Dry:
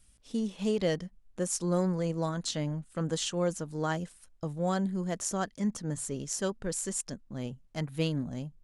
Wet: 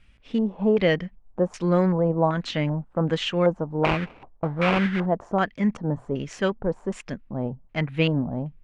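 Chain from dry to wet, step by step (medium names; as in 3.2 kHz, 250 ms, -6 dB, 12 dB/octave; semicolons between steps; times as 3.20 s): 3.83–5.06 s: sample-rate reducer 1.8 kHz, jitter 20%; LFO low-pass square 1.3 Hz 870–2400 Hz; trim +7.5 dB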